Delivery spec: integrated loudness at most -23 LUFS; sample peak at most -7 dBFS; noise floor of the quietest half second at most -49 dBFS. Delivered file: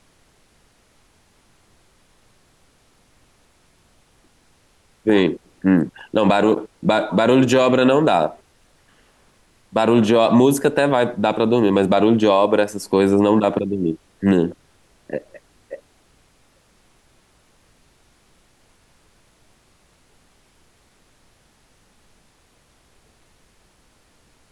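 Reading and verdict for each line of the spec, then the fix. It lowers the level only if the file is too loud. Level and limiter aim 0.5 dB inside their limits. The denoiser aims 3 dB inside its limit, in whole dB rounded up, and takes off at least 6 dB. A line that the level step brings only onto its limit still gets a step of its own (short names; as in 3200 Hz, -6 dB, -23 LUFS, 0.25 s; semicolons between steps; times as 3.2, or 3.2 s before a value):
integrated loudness -17.5 LUFS: fail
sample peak -5.5 dBFS: fail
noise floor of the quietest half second -58 dBFS: OK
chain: gain -6 dB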